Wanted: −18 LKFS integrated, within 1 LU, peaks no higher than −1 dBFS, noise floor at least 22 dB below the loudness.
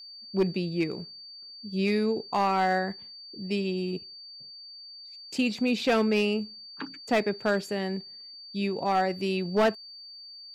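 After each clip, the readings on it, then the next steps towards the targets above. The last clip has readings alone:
share of clipped samples 0.6%; peaks flattened at −17.5 dBFS; interfering tone 4,600 Hz; level of the tone −43 dBFS; integrated loudness −28.0 LKFS; sample peak −17.5 dBFS; target loudness −18.0 LKFS
→ clipped peaks rebuilt −17.5 dBFS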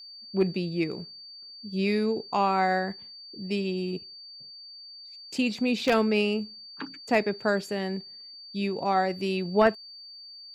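share of clipped samples 0.0%; interfering tone 4,600 Hz; level of the tone −43 dBFS
→ notch filter 4,600 Hz, Q 30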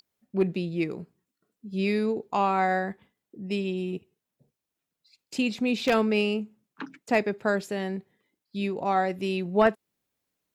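interfering tone none found; integrated loudness −27.5 LKFS; sample peak −8.5 dBFS; target loudness −18.0 LKFS
→ level +9.5 dB
brickwall limiter −1 dBFS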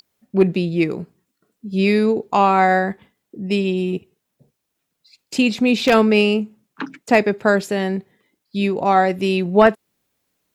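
integrated loudness −18.0 LKFS; sample peak −1.0 dBFS; background noise floor −77 dBFS

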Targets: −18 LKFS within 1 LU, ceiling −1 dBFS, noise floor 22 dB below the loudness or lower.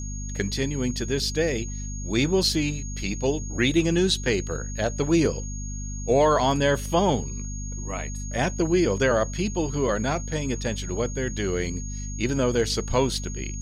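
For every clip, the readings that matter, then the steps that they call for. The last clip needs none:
mains hum 50 Hz; hum harmonics up to 250 Hz; level of the hum −30 dBFS; interfering tone 6,600 Hz; level of the tone −38 dBFS; integrated loudness −25.0 LKFS; sample peak −9.5 dBFS; target loudness −18.0 LKFS
→ mains-hum notches 50/100/150/200/250 Hz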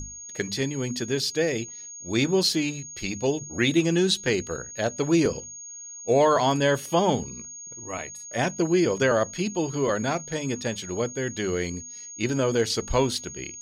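mains hum none found; interfering tone 6,600 Hz; level of the tone −38 dBFS
→ notch filter 6,600 Hz, Q 30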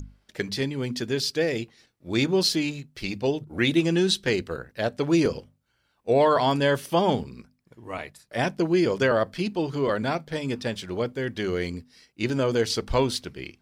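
interfering tone none found; integrated loudness −25.5 LKFS; sample peak −10.5 dBFS; target loudness −18.0 LKFS
→ level +7.5 dB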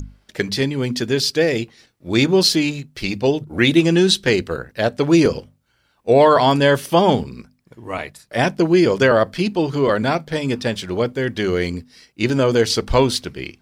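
integrated loudness −18.0 LKFS; sample peak −3.0 dBFS; background noise floor −63 dBFS

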